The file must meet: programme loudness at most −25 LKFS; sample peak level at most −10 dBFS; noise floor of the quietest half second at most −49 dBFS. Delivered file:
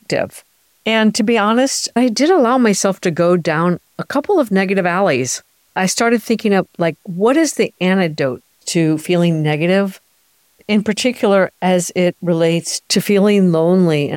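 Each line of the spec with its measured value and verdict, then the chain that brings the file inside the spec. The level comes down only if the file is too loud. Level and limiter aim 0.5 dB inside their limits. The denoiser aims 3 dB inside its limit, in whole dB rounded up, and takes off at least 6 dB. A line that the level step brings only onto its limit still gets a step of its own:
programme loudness −15.5 LKFS: out of spec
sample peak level −4.0 dBFS: out of spec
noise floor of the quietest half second −58 dBFS: in spec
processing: level −10 dB

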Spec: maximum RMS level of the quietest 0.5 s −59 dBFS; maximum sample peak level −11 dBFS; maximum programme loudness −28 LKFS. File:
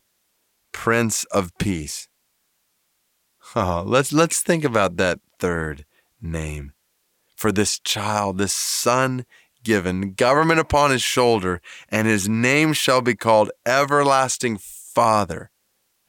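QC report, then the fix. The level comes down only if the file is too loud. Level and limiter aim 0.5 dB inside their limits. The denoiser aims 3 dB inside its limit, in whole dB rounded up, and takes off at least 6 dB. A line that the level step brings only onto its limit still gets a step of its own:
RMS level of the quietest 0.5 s −69 dBFS: in spec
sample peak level −5.0 dBFS: out of spec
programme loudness −20.0 LKFS: out of spec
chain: level −8.5 dB

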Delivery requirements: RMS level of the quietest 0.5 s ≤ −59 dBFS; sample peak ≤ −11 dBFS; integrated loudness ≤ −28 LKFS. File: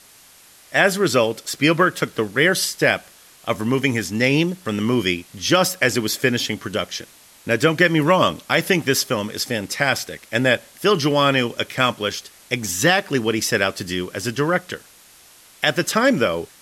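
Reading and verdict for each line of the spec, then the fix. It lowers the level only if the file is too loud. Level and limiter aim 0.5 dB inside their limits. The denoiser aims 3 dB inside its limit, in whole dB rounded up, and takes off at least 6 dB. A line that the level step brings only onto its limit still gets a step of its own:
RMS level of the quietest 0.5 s −49 dBFS: out of spec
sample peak −3.5 dBFS: out of spec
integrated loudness −19.5 LKFS: out of spec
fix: broadband denoise 6 dB, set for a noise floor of −49 dBFS
level −9 dB

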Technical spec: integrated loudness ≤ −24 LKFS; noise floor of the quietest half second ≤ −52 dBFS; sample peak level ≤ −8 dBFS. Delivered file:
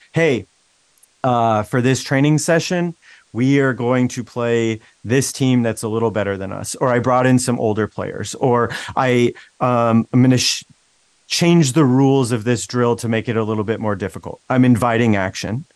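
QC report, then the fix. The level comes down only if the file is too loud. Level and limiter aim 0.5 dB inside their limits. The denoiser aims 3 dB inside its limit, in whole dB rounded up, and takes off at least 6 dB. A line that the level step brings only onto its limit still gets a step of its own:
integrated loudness −17.5 LKFS: out of spec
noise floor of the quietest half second −59 dBFS: in spec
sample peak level −4.0 dBFS: out of spec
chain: level −7 dB

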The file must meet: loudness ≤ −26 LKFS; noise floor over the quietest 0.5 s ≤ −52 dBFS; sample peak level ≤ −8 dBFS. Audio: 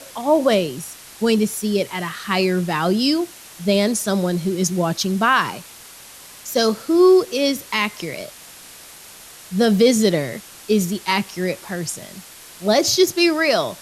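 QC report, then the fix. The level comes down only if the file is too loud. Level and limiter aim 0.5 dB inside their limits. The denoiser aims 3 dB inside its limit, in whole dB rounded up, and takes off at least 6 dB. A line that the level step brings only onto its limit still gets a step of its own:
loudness −19.0 LKFS: out of spec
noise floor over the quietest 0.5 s −42 dBFS: out of spec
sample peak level −5.0 dBFS: out of spec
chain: broadband denoise 6 dB, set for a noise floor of −42 dBFS
level −7.5 dB

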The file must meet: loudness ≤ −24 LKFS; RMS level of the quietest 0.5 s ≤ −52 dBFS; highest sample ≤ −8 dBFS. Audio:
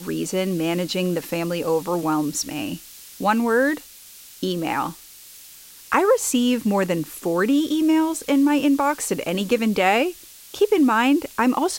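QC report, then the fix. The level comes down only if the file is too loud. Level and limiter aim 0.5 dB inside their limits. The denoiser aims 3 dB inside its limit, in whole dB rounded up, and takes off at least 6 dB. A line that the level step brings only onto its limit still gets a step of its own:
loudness −21.5 LKFS: out of spec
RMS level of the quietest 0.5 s −44 dBFS: out of spec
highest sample −4.5 dBFS: out of spec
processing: broadband denoise 8 dB, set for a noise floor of −44 dBFS
level −3 dB
brickwall limiter −8.5 dBFS

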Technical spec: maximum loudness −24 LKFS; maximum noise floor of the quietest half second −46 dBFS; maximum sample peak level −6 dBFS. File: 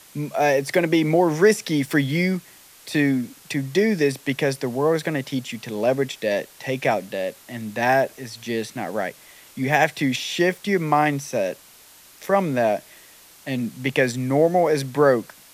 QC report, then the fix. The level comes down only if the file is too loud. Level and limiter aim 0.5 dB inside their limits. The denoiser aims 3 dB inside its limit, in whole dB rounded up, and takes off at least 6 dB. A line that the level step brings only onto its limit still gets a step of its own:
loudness −22.0 LKFS: out of spec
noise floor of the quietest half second −49 dBFS: in spec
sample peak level −5.0 dBFS: out of spec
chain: level −2.5 dB

